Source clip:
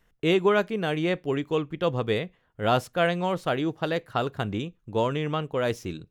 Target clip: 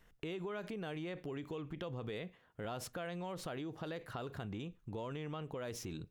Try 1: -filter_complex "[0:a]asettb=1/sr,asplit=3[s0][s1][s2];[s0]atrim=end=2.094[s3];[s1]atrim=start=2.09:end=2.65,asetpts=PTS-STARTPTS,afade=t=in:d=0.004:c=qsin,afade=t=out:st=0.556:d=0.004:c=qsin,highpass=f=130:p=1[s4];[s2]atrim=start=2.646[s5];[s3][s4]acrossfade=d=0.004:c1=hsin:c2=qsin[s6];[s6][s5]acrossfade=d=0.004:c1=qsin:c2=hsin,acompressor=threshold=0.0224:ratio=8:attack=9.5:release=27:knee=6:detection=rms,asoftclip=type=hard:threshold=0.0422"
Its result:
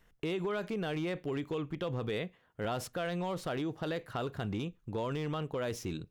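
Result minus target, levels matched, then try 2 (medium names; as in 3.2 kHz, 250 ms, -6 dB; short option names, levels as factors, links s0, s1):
compression: peak gain reduction -8 dB
-filter_complex "[0:a]asettb=1/sr,asplit=3[s0][s1][s2];[s0]atrim=end=2.094[s3];[s1]atrim=start=2.09:end=2.65,asetpts=PTS-STARTPTS,afade=t=in:d=0.004:c=qsin,afade=t=out:st=0.556:d=0.004:c=qsin,highpass=f=130:p=1[s4];[s2]atrim=start=2.646[s5];[s3][s4]acrossfade=d=0.004:c1=hsin:c2=qsin[s6];[s6][s5]acrossfade=d=0.004:c1=qsin:c2=hsin,acompressor=threshold=0.00794:ratio=8:attack=9.5:release=27:knee=6:detection=rms,asoftclip=type=hard:threshold=0.0422"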